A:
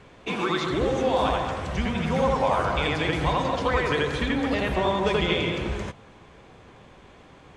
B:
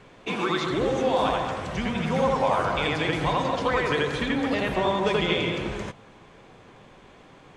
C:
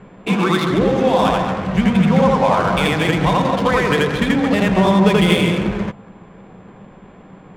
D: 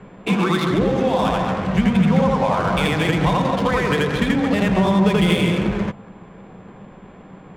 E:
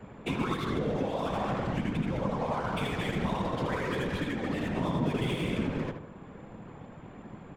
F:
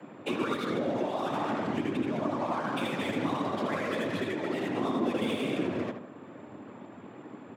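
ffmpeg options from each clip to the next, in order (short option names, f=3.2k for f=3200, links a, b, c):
-af "equalizer=f=66:t=o:w=0.55:g=-13"
-af "aeval=exprs='val(0)+0.00178*sin(2*PI*7200*n/s)':c=same,adynamicsmooth=sensitivity=6:basefreq=1.8k,equalizer=f=190:w=4.5:g=13,volume=7.5dB"
-filter_complex "[0:a]acrossover=split=170[a][b];[b]acompressor=threshold=-19dB:ratio=2[c];[a][c]amix=inputs=2:normalize=0"
-filter_complex "[0:a]alimiter=limit=-16.5dB:level=0:latency=1:release=464,afftfilt=real='hypot(re,im)*cos(2*PI*random(0))':imag='hypot(re,im)*sin(2*PI*random(1))':win_size=512:overlap=0.75,asplit=2[a][b];[b]adelay=75,lowpass=f=2.8k:p=1,volume=-7.5dB,asplit=2[c][d];[d]adelay=75,lowpass=f=2.8k:p=1,volume=0.46,asplit=2[e][f];[f]adelay=75,lowpass=f=2.8k:p=1,volume=0.46,asplit=2[g][h];[h]adelay=75,lowpass=f=2.8k:p=1,volume=0.46,asplit=2[i][j];[j]adelay=75,lowpass=f=2.8k:p=1,volume=0.46[k];[a][c][e][g][i][k]amix=inputs=6:normalize=0"
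-af "afreqshift=92"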